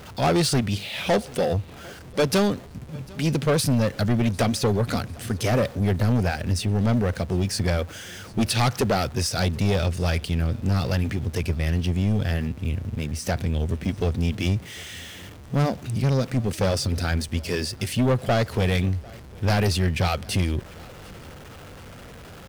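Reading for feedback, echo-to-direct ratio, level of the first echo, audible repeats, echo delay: 40%, -23.5 dB, -24.0 dB, 2, 748 ms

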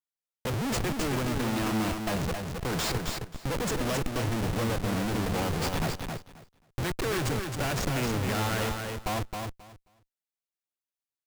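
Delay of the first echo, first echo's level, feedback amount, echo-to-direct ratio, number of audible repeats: 267 ms, -5.0 dB, 17%, -5.0 dB, 2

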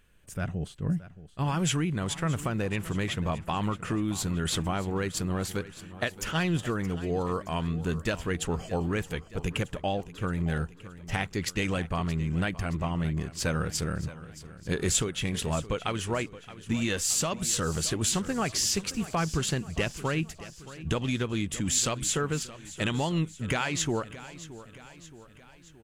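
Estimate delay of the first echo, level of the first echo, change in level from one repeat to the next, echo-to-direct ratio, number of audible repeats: 622 ms, -16.0 dB, -5.5 dB, -14.5 dB, 4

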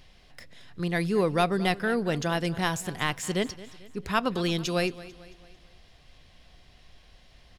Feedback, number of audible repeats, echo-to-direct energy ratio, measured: 47%, 3, -17.0 dB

